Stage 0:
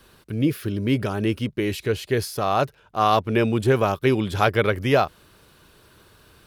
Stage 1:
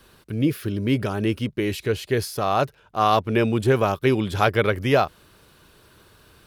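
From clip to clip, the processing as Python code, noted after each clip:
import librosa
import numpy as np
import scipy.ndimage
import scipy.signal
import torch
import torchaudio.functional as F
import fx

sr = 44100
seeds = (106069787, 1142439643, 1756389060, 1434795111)

y = x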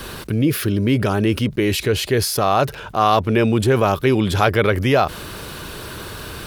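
y = fx.env_flatten(x, sr, amount_pct=50)
y = F.gain(torch.from_numpy(y), 1.5).numpy()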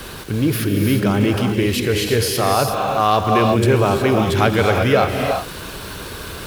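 y = fx.dmg_crackle(x, sr, seeds[0], per_s=590.0, level_db=-29.0)
y = fx.rev_gated(y, sr, seeds[1], gate_ms=390, shape='rising', drr_db=2.0)
y = F.gain(torch.from_numpy(y), -1.0).numpy()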